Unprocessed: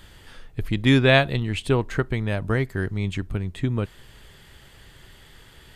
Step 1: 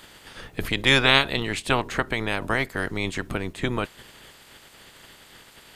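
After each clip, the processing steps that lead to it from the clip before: spectral peaks clipped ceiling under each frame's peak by 21 dB; trim -1.5 dB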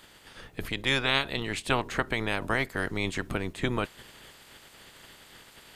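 gain riding within 3 dB 0.5 s; trim -5.5 dB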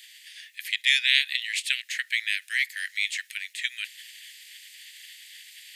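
steep high-pass 1.8 kHz 72 dB/octave; trim +7 dB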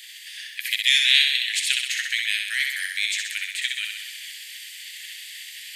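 dynamic bell 2 kHz, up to -7 dB, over -36 dBFS, Q 1.2; flutter echo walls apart 11 m, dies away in 0.98 s; trim +6 dB

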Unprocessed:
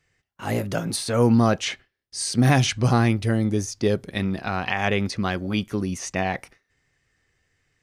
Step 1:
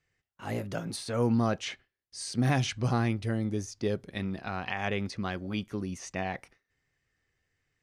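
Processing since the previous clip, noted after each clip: treble shelf 9.6 kHz -7.5 dB; trim -8.5 dB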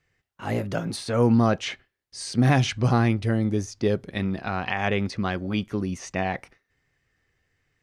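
treble shelf 5.2 kHz -6 dB; trim +7 dB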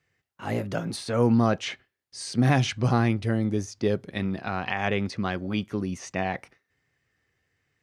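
high-pass 76 Hz; trim -1.5 dB

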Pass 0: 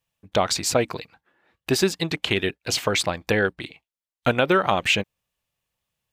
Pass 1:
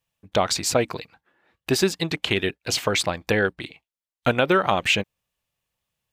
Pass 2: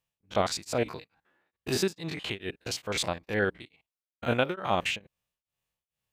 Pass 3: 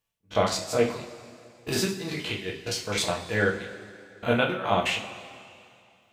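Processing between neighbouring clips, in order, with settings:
no audible change
spectrogram pixelated in time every 50 ms; tremolo of two beating tones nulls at 2.3 Hz; trim -3 dB
reverberation, pre-delay 3 ms, DRR -1 dB

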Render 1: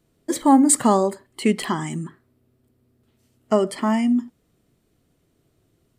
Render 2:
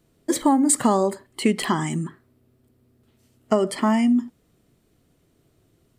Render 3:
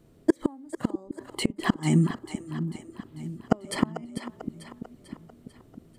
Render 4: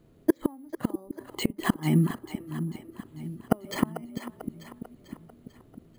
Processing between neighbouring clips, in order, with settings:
compression 6:1, threshold -17 dBFS, peak gain reduction 8.5 dB; trim +2.5 dB
tilt shelf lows +4 dB, about 1.3 kHz; inverted gate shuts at -10 dBFS, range -33 dB; two-band feedback delay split 380 Hz, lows 649 ms, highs 444 ms, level -10 dB; trim +2.5 dB
careless resampling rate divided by 4×, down filtered, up hold; trim -1 dB

